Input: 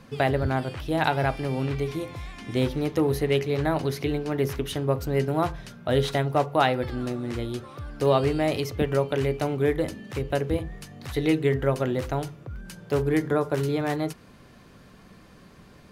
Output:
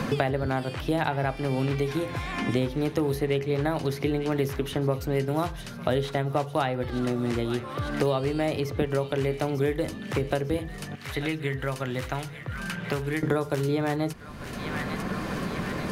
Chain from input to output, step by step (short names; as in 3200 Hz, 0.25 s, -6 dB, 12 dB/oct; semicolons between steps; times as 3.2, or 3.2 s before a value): 10.95–13.23 passive tone stack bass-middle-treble 5-5-5; thin delay 0.897 s, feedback 48%, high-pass 1700 Hz, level -15.5 dB; three-band squash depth 100%; gain -2 dB